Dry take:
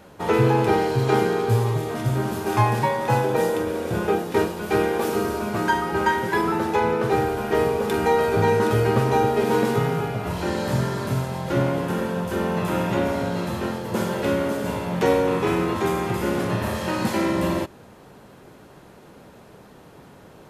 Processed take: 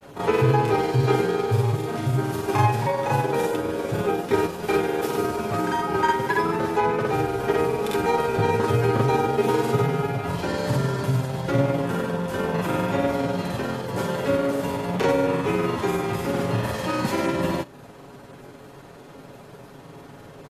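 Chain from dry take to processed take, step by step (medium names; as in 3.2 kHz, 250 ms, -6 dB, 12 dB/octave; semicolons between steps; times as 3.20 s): comb 7.2 ms, depth 43%; in parallel at -0.5 dB: compression, threshold -32 dBFS, peak gain reduction 18 dB; on the sum: granulator 100 ms, spray 37 ms, pitch spread up and down by 0 st; trim -2 dB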